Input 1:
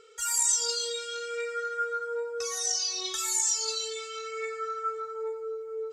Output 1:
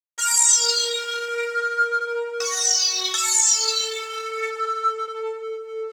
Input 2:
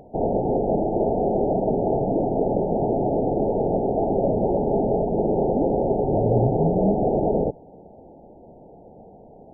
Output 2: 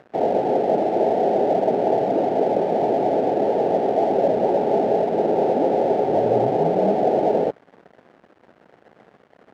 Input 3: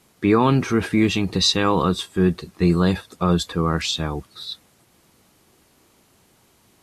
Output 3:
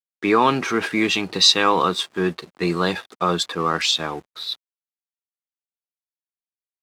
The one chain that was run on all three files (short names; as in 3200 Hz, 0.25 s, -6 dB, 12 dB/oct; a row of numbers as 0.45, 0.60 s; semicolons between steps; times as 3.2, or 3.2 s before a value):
backlash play -38 dBFS; weighting filter A; match loudness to -20 LUFS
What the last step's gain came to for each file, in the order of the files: +10.0, +6.5, +4.0 dB